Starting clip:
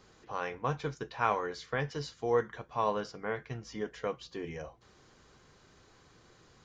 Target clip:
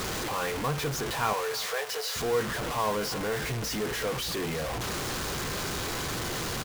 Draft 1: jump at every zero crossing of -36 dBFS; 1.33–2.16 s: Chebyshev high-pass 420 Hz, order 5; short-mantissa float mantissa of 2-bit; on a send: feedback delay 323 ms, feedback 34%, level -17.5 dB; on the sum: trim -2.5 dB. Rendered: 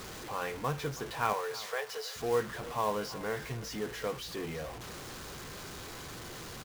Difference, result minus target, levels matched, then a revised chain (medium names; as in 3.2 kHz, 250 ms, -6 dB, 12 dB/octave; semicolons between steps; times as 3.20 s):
jump at every zero crossing: distortion -7 dB
jump at every zero crossing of -25 dBFS; 1.33–2.16 s: Chebyshev high-pass 420 Hz, order 5; short-mantissa float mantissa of 2-bit; on a send: feedback delay 323 ms, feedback 34%, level -17.5 dB; on the sum: trim -2.5 dB